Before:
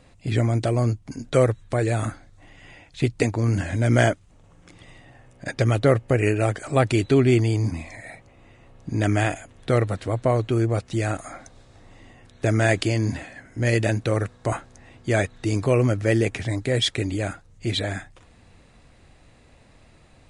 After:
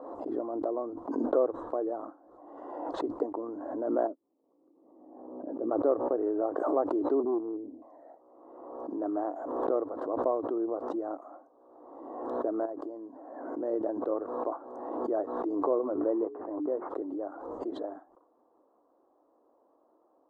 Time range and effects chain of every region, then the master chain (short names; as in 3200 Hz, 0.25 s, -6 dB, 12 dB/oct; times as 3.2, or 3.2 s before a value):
4.07–5.71 band-pass 210 Hz, Q 1.5 + doubler 15 ms -12 dB
7.2–7.82 inverse Chebyshev low-pass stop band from 1800 Hz, stop band 60 dB + overloaded stage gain 15 dB
12.65–13.44 bell 3000 Hz -6 dB 1 oct + compressor 2.5:1, threshold -29 dBFS
15.79–16.9 expander -28 dBFS + notches 60/120/180/240/300/360/420 Hz + careless resampling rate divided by 8×, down none, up filtered
whole clip: elliptic band-pass 300–1100 Hz, stop band 40 dB; backwards sustainer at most 37 dB/s; gain -6.5 dB